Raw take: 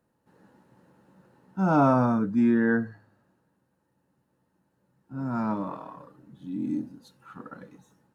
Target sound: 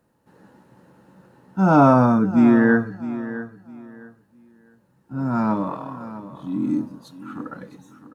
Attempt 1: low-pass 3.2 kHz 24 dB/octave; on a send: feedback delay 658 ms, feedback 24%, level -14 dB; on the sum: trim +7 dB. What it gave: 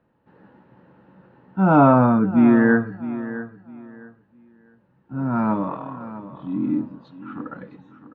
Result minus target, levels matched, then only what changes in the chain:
4 kHz band -6.0 dB
remove: low-pass 3.2 kHz 24 dB/octave

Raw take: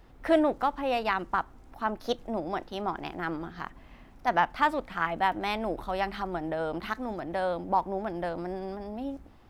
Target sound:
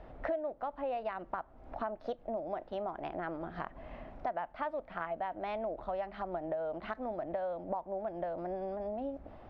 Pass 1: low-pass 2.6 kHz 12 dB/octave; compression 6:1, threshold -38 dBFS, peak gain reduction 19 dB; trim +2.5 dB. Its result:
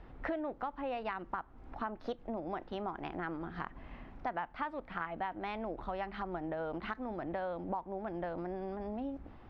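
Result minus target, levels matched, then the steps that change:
500 Hz band -3.0 dB
add after low-pass: peaking EQ 620 Hz +13.5 dB 0.52 oct

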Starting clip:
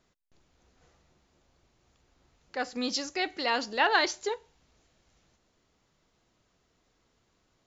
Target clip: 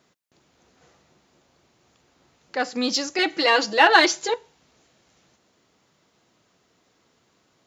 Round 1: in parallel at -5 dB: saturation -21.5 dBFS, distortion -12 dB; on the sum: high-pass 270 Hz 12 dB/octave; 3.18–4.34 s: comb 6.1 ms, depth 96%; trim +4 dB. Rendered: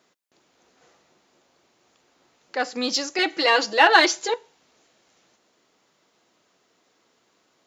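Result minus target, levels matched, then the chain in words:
125 Hz band -5.5 dB
in parallel at -5 dB: saturation -21.5 dBFS, distortion -12 dB; on the sum: high-pass 130 Hz 12 dB/octave; 3.18–4.34 s: comb 6.1 ms, depth 96%; trim +4 dB

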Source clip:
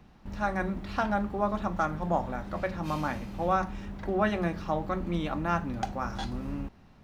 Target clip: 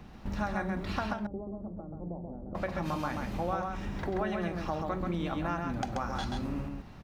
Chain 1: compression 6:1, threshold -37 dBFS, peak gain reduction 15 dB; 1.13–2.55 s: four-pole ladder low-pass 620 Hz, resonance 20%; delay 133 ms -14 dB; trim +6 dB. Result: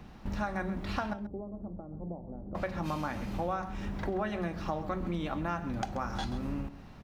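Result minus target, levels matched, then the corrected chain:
echo-to-direct -10 dB
compression 6:1, threshold -37 dBFS, peak gain reduction 15 dB; 1.13–2.55 s: four-pole ladder low-pass 620 Hz, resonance 20%; delay 133 ms -4 dB; trim +6 dB

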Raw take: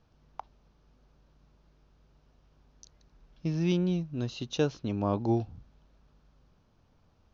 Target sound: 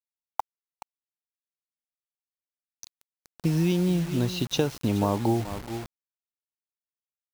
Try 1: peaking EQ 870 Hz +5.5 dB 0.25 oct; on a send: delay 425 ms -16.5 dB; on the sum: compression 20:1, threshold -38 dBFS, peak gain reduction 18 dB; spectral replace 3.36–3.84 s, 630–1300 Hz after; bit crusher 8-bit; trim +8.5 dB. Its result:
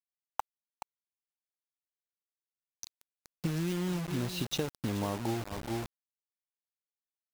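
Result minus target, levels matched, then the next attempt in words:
compression: peak gain reduction +9.5 dB
peaking EQ 870 Hz +5.5 dB 0.25 oct; on a send: delay 425 ms -16.5 dB; on the sum: compression 20:1, threshold -28 dBFS, peak gain reduction 8.5 dB; spectral replace 3.36–3.84 s, 630–1300 Hz after; bit crusher 8-bit; trim +8.5 dB

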